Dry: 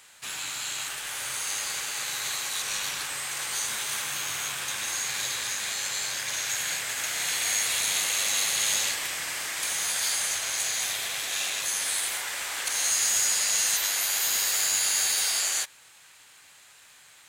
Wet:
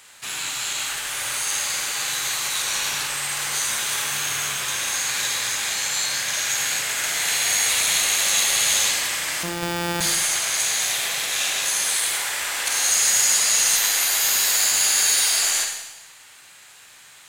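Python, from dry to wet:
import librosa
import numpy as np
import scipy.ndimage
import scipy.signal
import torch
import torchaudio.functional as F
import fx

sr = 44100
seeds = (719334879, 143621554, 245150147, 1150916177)

y = fx.sample_sort(x, sr, block=256, at=(9.43, 10.01))
y = fx.rev_schroeder(y, sr, rt60_s=1.0, comb_ms=38, drr_db=3.0)
y = y * librosa.db_to_amplitude(4.5)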